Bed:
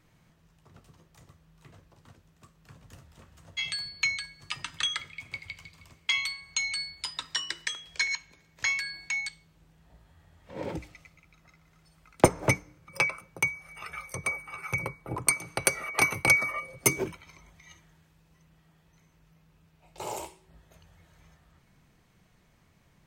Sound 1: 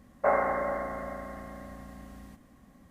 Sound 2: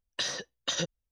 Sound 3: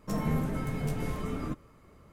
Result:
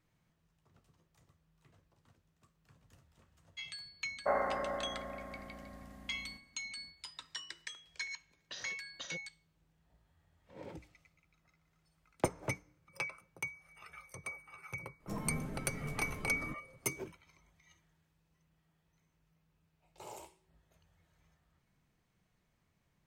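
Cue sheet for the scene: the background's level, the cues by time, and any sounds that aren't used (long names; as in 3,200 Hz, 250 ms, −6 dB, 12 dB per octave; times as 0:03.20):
bed −13 dB
0:04.02: mix in 1 −7 dB + downward expander −52 dBFS
0:08.32: mix in 2 −15 dB + downsampling to 16,000 Hz
0:15.00: mix in 3 −10 dB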